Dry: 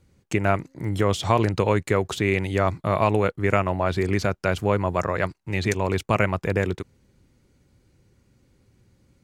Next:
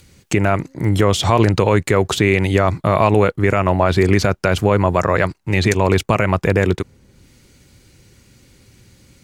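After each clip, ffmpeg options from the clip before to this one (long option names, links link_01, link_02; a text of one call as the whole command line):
ffmpeg -i in.wav -filter_complex "[0:a]acrossover=split=1900[link_01][link_02];[link_02]acompressor=mode=upward:threshold=-56dB:ratio=2.5[link_03];[link_01][link_03]amix=inputs=2:normalize=0,alimiter=level_in=11dB:limit=-1dB:release=50:level=0:latency=1,volume=-1dB" out.wav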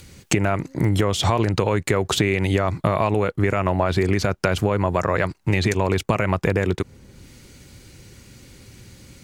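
ffmpeg -i in.wav -af "acompressor=threshold=-20dB:ratio=6,volume=4dB" out.wav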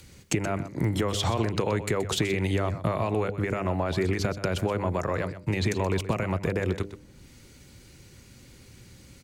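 ffmpeg -i in.wav -filter_complex "[0:a]bandreject=frequency=100.3:width_type=h:width=4,bandreject=frequency=200.6:width_type=h:width=4,bandreject=frequency=300.9:width_type=h:width=4,bandreject=frequency=401.2:width_type=h:width=4,bandreject=frequency=501.5:width_type=h:width=4,bandreject=frequency=601.8:width_type=h:width=4,bandreject=frequency=702.1:width_type=h:width=4,acrossover=split=280|560|3800[link_01][link_02][link_03][link_04];[link_03]alimiter=limit=-17.5dB:level=0:latency=1[link_05];[link_01][link_02][link_05][link_04]amix=inputs=4:normalize=0,aecho=1:1:126:0.224,volume=-5.5dB" out.wav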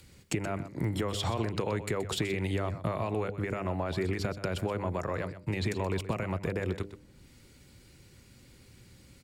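ffmpeg -i in.wav -af "bandreject=frequency=6200:width=8.6,volume=-5dB" out.wav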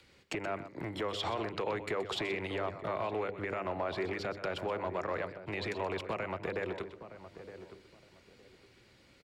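ffmpeg -i in.wav -filter_complex "[0:a]asoftclip=type=hard:threshold=-24.5dB,acrossover=split=320 4900:gain=0.224 1 0.158[link_01][link_02][link_03];[link_01][link_02][link_03]amix=inputs=3:normalize=0,asplit=2[link_04][link_05];[link_05]adelay=916,lowpass=frequency=1000:poles=1,volume=-11dB,asplit=2[link_06][link_07];[link_07]adelay=916,lowpass=frequency=1000:poles=1,volume=0.26,asplit=2[link_08][link_09];[link_09]adelay=916,lowpass=frequency=1000:poles=1,volume=0.26[link_10];[link_04][link_06][link_08][link_10]amix=inputs=4:normalize=0" out.wav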